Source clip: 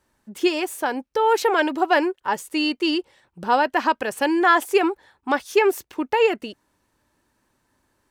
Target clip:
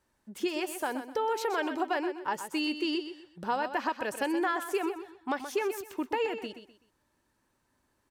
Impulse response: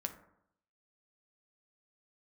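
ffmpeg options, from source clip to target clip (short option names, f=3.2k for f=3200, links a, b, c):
-filter_complex "[0:a]acompressor=threshold=-20dB:ratio=6,asplit=2[a][b];[b]aecho=0:1:126|252|378:0.316|0.0949|0.0285[c];[a][c]amix=inputs=2:normalize=0,volume=-6.5dB"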